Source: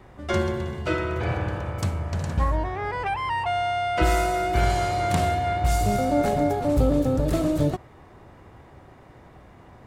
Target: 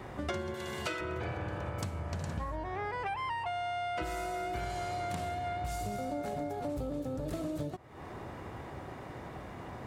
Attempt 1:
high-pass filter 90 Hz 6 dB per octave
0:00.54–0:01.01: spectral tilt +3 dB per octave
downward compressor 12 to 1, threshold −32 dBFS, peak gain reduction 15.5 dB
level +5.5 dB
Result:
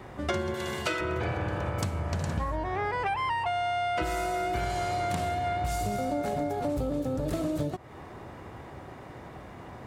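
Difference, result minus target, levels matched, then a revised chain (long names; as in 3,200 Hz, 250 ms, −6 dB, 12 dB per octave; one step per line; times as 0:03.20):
downward compressor: peak gain reduction −6.5 dB
high-pass filter 90 Hz 6 dB per octave
0:00.54–0:01.01: spectral tilt +3 dB per octave
downward compressor 12 to 1, threshold −39 dBFS, peak gain reduction 21.5 dB
level +5.5 dB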